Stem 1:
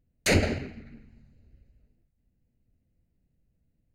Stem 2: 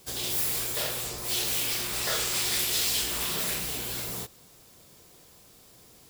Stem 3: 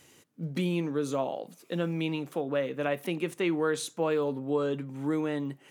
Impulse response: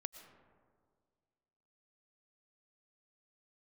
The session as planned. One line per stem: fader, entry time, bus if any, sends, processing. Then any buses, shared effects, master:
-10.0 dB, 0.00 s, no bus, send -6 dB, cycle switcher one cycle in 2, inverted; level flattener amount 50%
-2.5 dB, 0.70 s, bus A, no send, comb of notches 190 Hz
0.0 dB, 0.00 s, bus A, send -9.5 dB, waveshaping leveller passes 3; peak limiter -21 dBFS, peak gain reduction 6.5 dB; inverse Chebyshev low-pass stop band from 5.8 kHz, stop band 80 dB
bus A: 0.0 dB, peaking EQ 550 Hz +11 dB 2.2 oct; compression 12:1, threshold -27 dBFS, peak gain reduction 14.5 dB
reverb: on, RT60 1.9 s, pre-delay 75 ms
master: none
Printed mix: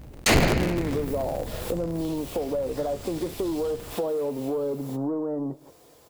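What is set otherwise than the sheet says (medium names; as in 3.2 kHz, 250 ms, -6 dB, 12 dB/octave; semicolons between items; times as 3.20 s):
stem 1 -10.0 dB -> +1.0 dB; stem 3: missing peak limiter -21 dBFS, peak gain reduction 6.5 dB; reverb return -9.0 dB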